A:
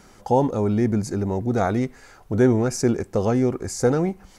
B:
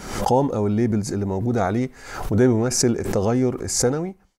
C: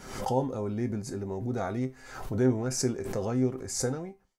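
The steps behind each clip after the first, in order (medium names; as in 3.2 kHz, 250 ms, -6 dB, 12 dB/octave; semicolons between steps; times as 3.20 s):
fade out at the end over 0.61 s; swell ahead of each attack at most 69 dB/s
feedback comb 130 Hz, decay 0.21 s, harmonics all, mix 70%; trim -4 dB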